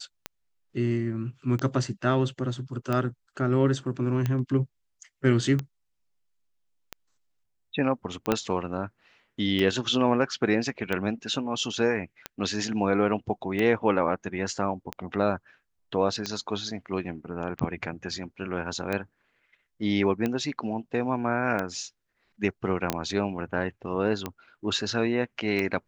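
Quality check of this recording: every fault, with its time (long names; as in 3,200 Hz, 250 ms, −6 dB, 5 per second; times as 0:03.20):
scratch tick 45 rpm −15 dBFS
0:08.32: click −9 dBFS
0:22.90: click −9 dBFS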